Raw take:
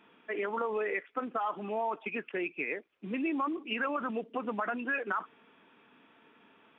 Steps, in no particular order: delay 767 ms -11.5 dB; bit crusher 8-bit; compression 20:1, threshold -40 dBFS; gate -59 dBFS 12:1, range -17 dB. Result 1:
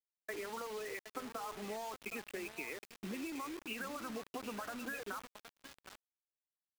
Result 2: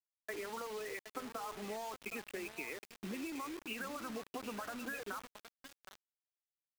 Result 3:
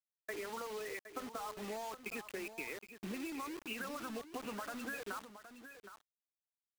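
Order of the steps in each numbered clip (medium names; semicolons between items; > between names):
compression > delay > bit crusher > gate; gate > compression > delay > bit crusher; compression > bit crusher > delay > gate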